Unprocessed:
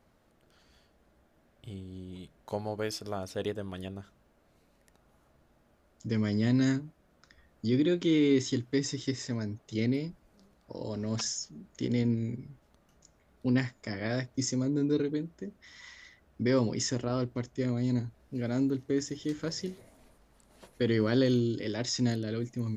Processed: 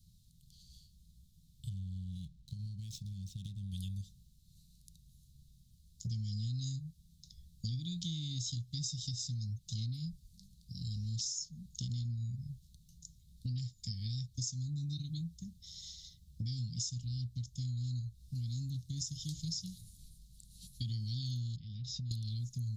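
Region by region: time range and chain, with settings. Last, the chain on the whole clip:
1.69–3.72 median filter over 9 samples + high shelf 7500 Hz -10 dB + compressor 2.5:1, threshold -40 dBFS
21.56–22.11 LPF 2400 Hz + notch comb 280 Hz + compressor 3:1, threshold -40 dBFS
whole clip: Chebyshev band-stop 170–3800 Hz, order 4; dynamic EQ 180 Hz, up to -4 dB, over -53 dBFS, Q 2.1; compressor, threshold -44 dBFS; gain +8 dB

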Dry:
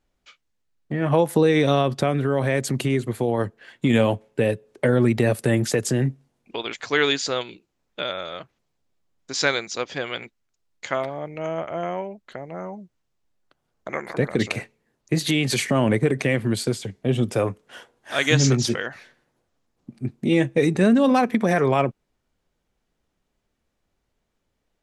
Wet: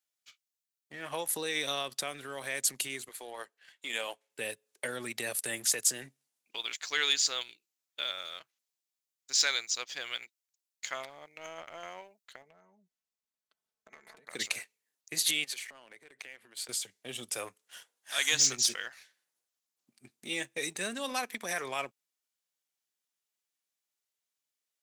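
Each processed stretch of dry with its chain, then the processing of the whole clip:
3.09–4.3 HPF 410 Hz + high shelf 6400 Hz -7 dB
12.42–14.27 tilt -2.5 dB/oct + comb 4.6 ms, depth 71% + compressor 20:1, threshold -33 dBFS
15.44–16.69 tone controls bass -11 dB, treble -11 dB + compressor, threshold -32 dBFS
whole clip: differentiator; sample leveller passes 1

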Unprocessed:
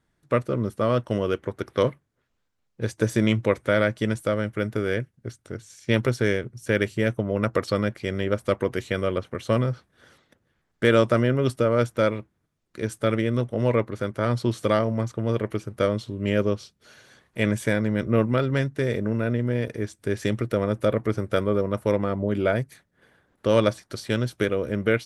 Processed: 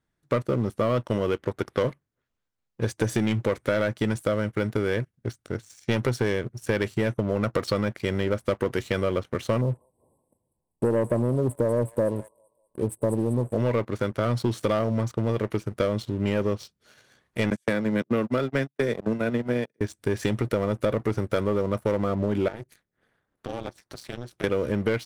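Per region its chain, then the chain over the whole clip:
9.61–13.58 brick-wall FIR band-stop 1100–7600 Hz + thin delay 0.195 s, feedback 45%, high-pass 2100 Hz, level -3 dB
17.5–19.81 HPF 150 Hz 24 dB/oct + gate -26 dBFS, range -35 dB + three-band squash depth 70%
22.48–24.44 AM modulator 240 Hz, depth 90% + compressor 2.5:1, threshold -40 dBFS
whole clip: sample leveller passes 2; compressor, threshold -17 dBFS; gain -3.5 dB

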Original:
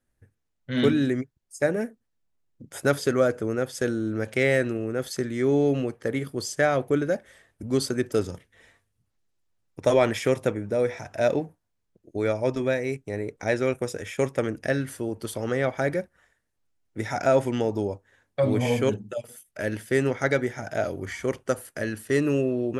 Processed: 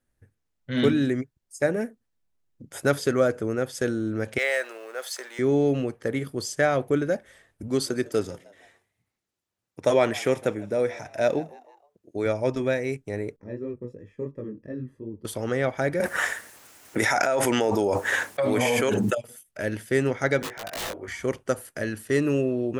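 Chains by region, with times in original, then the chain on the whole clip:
4.38–5.39 G.711 law mismatch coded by mu + HPF 580 Hz 24 dB/oct
7.68–12.26 HPF 150 Hz 6 dB/oct + frequency-shifting echo 0.157 s, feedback 46%, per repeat +91 Hz, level -22 dB
13.36–15.25 bell 69 Hz -6.5 dB 1.6 oct + chorus 2.9 Hz, delay 18 ms, depth 6.5 ms + running mean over 60 samples
16–19.15 HPF 970 Hz 6 dB/oct + bell 3900 Hz -5 dB 1.3 oct + fast leveller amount 100%
20.42–21.08 three-band isolator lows -16 dB, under 380 Hz, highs -19 dB, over 2400 Hz + wrapped overs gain 28.5 dB + doubler 19 ms -2.5 dB
whole clip: dry

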